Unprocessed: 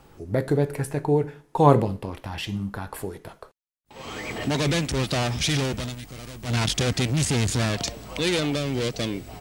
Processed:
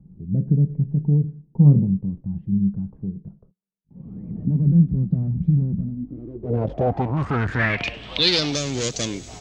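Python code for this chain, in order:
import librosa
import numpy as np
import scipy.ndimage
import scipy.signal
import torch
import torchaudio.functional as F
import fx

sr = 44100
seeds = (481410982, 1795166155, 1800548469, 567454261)

y = fx.filter_sweep_lowpass(x, sr, from_hz=180.0, to_hz=6700.0, start_s=5.79, end_s=8.63, q=6.9)
y = fx.echo_wet_highpass(y, sr, ms=100, feedback_pct=77, hz=2500.0, wet_db=-20.0)
y = fx.doppler_dist(y, sr, depth_ms=0.1)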